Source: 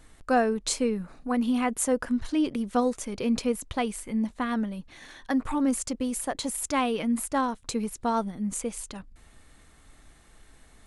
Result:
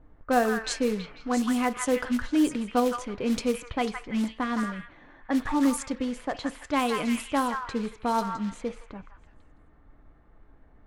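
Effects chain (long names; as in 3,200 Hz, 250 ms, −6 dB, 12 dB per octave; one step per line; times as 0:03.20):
echo through a band-pass that steps 165 ms, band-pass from 1,500 Hz, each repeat 0.7 octaves, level −1 dB
floating-point word with a short mantissa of 2 bits
low-pass that shuts in the quiet parts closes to 820 Hz, open at −20.5 dBFS
feedback delay network reverb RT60 0.35 s, low-frequency decay 0.7×, high-frequency decay 0.4×, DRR 12.5 dB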